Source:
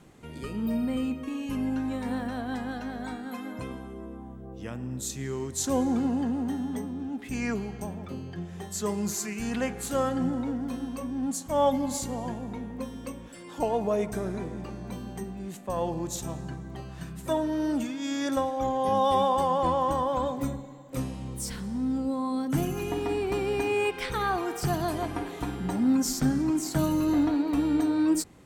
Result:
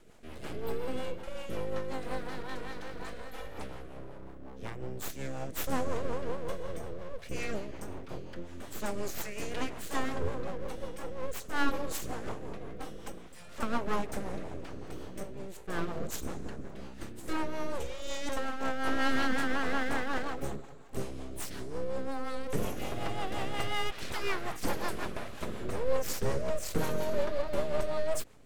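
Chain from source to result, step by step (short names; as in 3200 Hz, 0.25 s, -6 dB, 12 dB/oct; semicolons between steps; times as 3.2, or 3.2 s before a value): 15.98–16.75 octaver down 1 oct, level -1 dB; full-wave rectifier; rotary speaker horn 5.5 Hz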